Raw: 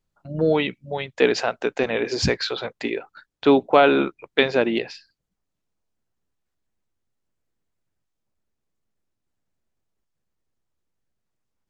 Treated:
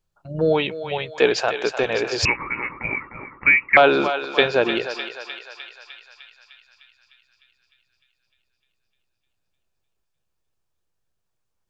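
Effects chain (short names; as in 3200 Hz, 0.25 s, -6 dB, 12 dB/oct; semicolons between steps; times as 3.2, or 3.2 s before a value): bell 240 Hz -8.5 dB 0.67 oct; notch 2000 Hz, Q 10; on a send: thinning echo 0.303 s, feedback 69%, high-pass 770 Hz, level -7.5 dB; 2.25–3.77 on the sum: inverted band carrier 2700 Hz; gain +2 dB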